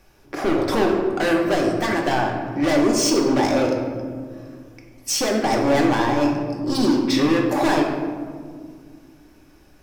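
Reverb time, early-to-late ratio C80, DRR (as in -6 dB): 2.0 s, 5.5 dB, -0.5 dB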